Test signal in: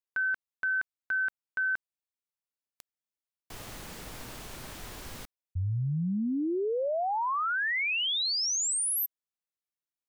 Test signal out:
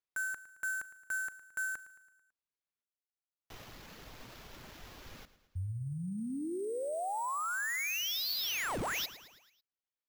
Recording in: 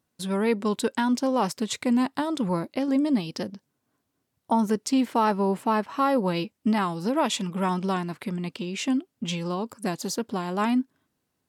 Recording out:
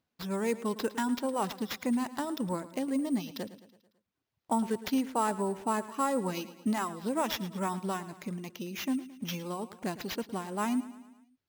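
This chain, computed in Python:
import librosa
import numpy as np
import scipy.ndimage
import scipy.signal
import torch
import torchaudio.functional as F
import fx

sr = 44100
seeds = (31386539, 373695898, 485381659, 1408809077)

y = fx.dereverb_blind(x, sr, rt60_s=0.87)
y = fx.sample_hold(y, sr, seeds[0], rate_hz=8900.0, jitter_pct=0)
y = fx.echo_feedback(y, sr, ms=110, feedback_pct=54, wet_db=-16.0)
y = y * librosa.db_to_amplitude(-6.0)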